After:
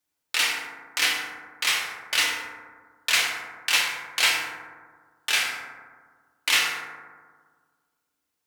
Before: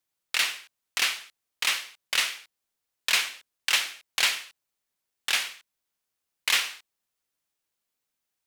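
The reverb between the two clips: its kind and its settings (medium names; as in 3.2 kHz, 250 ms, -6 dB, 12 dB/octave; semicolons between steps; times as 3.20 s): FDN reverb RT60 1.6 s, low-frequency decay 1.2×, high-frequency decay 0.3×, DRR -3 dB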